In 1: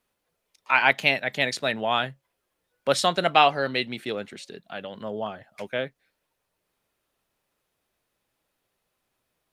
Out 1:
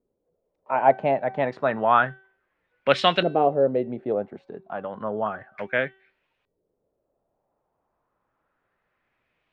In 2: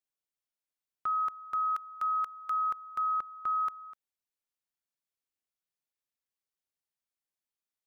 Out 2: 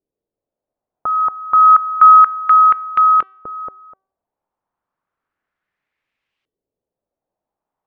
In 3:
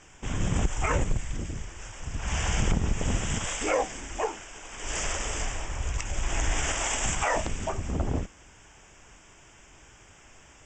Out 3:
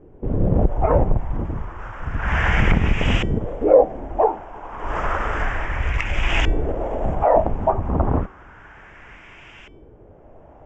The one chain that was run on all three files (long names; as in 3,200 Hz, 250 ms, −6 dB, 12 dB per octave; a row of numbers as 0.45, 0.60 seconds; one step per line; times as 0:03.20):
auto-filter low-pass saw up 0.31 Hz 400–2,900 Hz
hum removal 383.5 Hz, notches 29
normalise the peak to −1.5 dBFS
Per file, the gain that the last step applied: +2.0, +17.0, +8.0 decibels